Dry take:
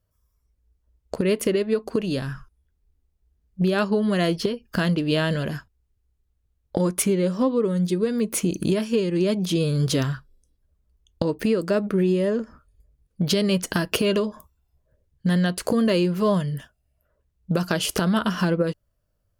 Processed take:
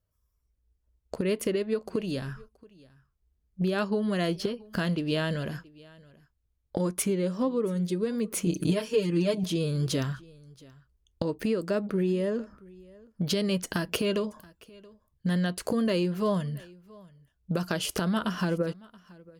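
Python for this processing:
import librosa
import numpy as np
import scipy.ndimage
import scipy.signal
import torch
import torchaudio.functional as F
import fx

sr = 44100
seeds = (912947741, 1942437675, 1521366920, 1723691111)

y = fx.comb(x, sr, ms=6.6, depth=0.98, at=(8.46, 9.44))
y = y + 10.0 ** (-23.5 / 20.0) * np.pad(y, (int(677 * sr / 1000.0), 0))[:len(y)]
y = F.gain(torch.from_numpy(y), -6.0).numpy()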